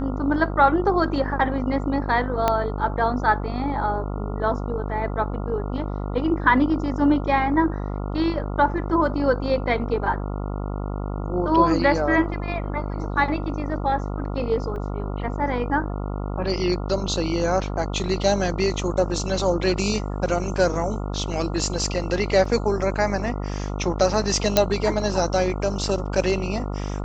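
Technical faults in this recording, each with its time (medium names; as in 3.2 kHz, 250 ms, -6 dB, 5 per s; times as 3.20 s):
buzz 50 Hz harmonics 28 -28 dBFS
2.48 s: pop -6 dBFS
14.76 s: dropout 2.8 ms
22.45 s: dropout 4 ms
24.57 s: pop -1 dBFS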